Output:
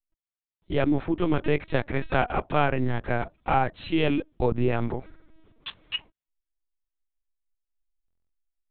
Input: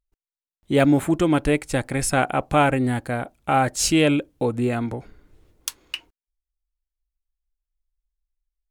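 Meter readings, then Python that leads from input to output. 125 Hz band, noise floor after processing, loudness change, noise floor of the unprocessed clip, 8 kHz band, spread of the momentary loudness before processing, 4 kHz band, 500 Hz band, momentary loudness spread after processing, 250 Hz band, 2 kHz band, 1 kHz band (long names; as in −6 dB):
−3.5 dB, below −85 dBFS, −5.5 dB, below −85 dBFS, below −40 dB, 15 LU, −5.5 dB, −4.0 dB, 9 LU, −6.5 dB, −4.5 dB, −4.0 dB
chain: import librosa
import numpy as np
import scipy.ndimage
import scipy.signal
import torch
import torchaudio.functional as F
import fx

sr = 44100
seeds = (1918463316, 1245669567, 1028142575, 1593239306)

y = fx.dynamic_eq(x, sr, hz=180.0, q=3.8, threshold_db=-39.0, ratio=4.0, max_db=-5)
y = fx.rider(y, sr, range_db=4, speed_s=0.5)
y = fx.lpc_vocoder(y, sr, seeds[0], excitation='pitch_kept', order=10)
y = fx.buffer_glitch(y, sr, at_s=(8.06,), block=1024, repeats=9)
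y = y * 10.0 ** (-3.0 / 20.0)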